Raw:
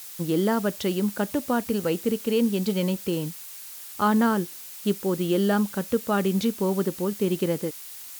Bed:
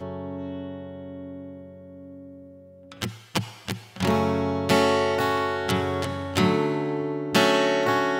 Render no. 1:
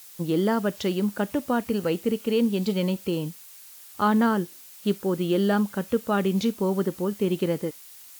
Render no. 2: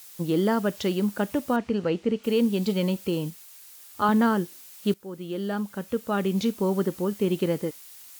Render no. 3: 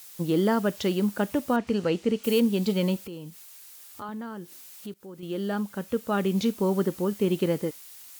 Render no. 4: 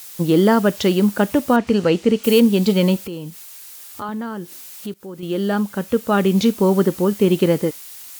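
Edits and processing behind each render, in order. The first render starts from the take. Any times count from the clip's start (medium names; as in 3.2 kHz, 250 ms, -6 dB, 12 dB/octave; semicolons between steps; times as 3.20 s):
noise print and reduce 6 dB
1.56–2.24 s: distance through air 120 m; 3.30–4.09 s: comb of notches 190 Hz; 4.94–6.62 s: fade in, from -15.5 dB
1.67–2.40 s: treble shelf 5.2 kHz +11 dB; 3.06–5.23 s: compression 2.5:1, threshold -41 dBFS
trim +9 dB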